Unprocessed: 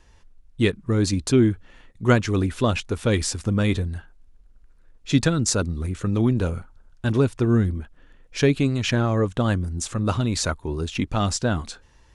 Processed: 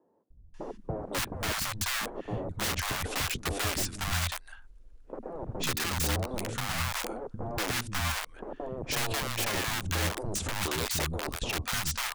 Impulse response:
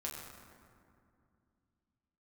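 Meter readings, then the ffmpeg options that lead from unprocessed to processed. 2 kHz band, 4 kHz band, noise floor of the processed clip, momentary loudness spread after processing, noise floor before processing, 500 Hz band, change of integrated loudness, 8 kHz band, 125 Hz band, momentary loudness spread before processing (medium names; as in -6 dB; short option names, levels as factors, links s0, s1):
-2.0 dB, -1.0 dB, -54 dBFS, 10 LU, -54 dBFS, -12.0 dB, -8.5 dB, -2.5 dB, -13.5 dB, 9 LU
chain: -filter_complex "[0:a]aeval=exprs='(mod(10.6*val(0)+1,2)-1)/10.6':c=same,acompressor=threshold=0.0355:ratio=3,acrossover=split=230|770[s0][s1][s2];[s0]adelay=300[s3];[s2]adelay=540[s4];[s3][s1][s4]amix=inputs=3:normalize=0"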